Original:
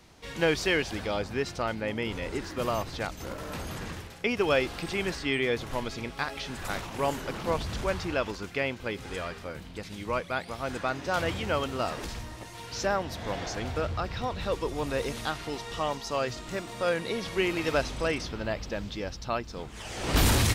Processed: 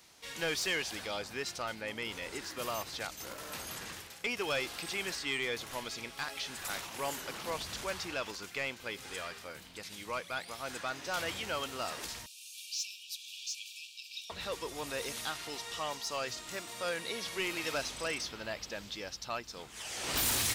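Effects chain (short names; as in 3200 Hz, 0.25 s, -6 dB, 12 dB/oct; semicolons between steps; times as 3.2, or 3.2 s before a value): tilt +3 dB/oct; soft clip -20.5 dBFS, distortion -13 dB; 12.26–14.3 brick-wall FIR high-pass 2300 Hz; gain -5.5 dB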